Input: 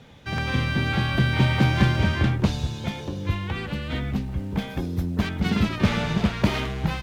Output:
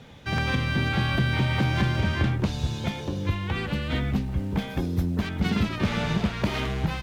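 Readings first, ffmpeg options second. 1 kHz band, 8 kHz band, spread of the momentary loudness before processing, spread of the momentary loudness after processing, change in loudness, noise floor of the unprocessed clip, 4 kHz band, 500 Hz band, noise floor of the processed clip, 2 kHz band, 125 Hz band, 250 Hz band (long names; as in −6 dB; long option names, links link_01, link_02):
−1.5 dB, −1.5 dB, 9 LU, 5 LU, −2.0 dB, −36 dBFS, −1.5 dB, −1.5 dB, −36 dBFS, −1.5 dB, −2.0 dB, −2.0 dB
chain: -af "alimiter=limit=-15.5dB:level=0:latency=1:release=281,volume=1.5dB"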